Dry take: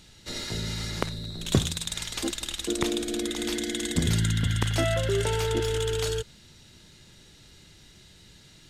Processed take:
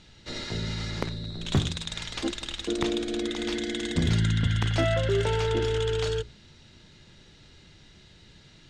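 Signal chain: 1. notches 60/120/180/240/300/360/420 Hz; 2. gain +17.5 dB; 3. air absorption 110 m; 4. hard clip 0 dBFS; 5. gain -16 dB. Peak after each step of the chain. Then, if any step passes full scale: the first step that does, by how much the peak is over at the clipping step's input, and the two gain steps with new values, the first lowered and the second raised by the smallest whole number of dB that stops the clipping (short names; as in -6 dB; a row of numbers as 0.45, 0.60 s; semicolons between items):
-8.0, +9.5, +9.0, 0.0, -16.0 dBFS; step 2, 9.0 dB; step 2 +8.5 dB, step 5 -7 dB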